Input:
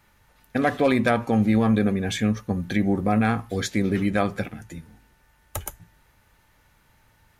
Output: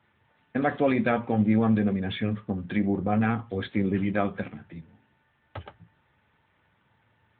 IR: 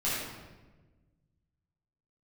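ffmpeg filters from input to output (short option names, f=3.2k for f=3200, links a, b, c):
-filter_complex "[0:a]asettb=1/sr,asplit=3[a][b][c];[a]atrim=end=1.694[d];[b]atrim=start=1.69:end=4,asetpts=PTS-STARTPTS,afade=t=in:d=0.004:c=qsin,afade=t=out:st=2.306:d=0.004:c=qsin,agate=range=-33dB:threshold=-38dB:ratio=3:detection=peak[e];[c]atrim=start=3.996[f];[d][e]acrossfade=d=0.004:c1=hsin:c2=qsin[g];[g][f]acrossfade=d=0.004:c1=qsin:c2=hsin,flanger=delay=8.4:depth=5.8:regen=-59:speed=0.56:shape=sinusoidal,volume=1dB" -ar 8000 -c:a libopencore_amrnb -b:a 12200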